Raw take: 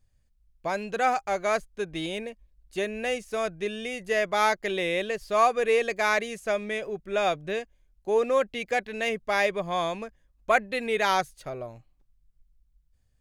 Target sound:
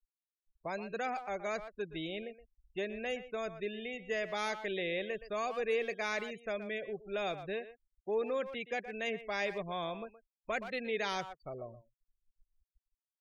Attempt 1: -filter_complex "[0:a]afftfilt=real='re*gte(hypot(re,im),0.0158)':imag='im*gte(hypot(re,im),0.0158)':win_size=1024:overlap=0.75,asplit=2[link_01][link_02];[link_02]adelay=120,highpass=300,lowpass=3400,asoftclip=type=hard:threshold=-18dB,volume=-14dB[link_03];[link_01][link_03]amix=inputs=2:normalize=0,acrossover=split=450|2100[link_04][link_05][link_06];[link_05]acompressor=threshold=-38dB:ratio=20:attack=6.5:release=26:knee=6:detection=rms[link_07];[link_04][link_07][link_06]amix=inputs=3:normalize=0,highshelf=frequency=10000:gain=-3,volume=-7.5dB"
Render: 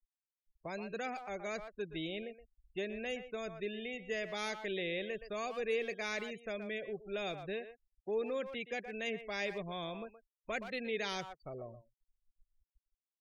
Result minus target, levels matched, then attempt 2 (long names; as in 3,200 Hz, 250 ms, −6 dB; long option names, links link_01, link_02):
downward compressor: peak gain reduction +8 dB
-filter_complex "[0:a]afftfilt=real='re*gte(hypot(re,im),0.0158)':imag='im*gte(hypot(re,im),0.0158)':win_size=1024:overlap=0.75,asplit=2[link_01][link_02];[link_02]adelay=120,highpass=300,lowpass=3400,asoftclip=type=hard:threshold=-18dB,volume=-14dB[link_03];[link_01][link_03]amix=inputs=2:normalize=0,acrossover=split=450|2100[link_04][link_05][link_06];[link_05]acompressor=threshold=-29.5dB:ratio=20:attack=6.5:release=26:knee=6:detection=rms[link_07];[link_04][link_07][link_06]amix=inputs=3:normalize=0,highshelf=frequency=10000:gain=-3,volume=-7.5dB"